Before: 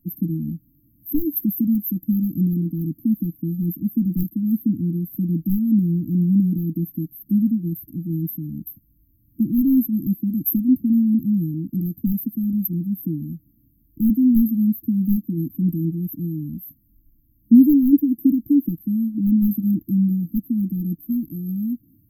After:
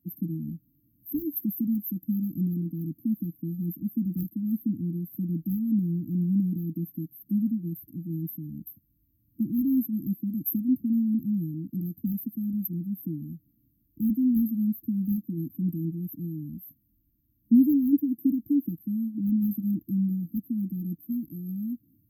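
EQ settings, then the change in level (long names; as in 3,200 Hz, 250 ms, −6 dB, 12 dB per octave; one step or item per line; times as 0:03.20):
high-pass filter 61 Hz
notch filter 1,100 Hz, Q 28
−7.5 dB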